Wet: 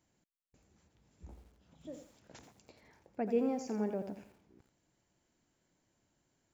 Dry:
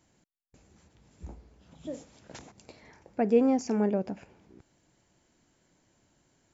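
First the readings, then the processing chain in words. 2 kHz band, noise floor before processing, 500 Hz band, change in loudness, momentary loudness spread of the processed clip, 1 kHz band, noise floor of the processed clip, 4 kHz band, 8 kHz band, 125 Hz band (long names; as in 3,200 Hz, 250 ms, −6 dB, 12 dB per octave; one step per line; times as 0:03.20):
−8.5 dB, −71 dBFS, −8.5 dB, −8.0 dB, 19 LU, −8.5 dB, −80 dBFS, −8.5 dB, can't be measured, −9.0 dB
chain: feedback echo at a low word length 85 ms, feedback 35%, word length 9 bits, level −9 dB
level −9 dB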